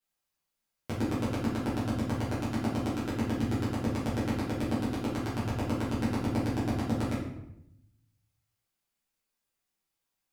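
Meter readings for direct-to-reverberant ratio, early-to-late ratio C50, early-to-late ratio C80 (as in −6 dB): −10.0 dB, 2.5 dB, 6.5 dB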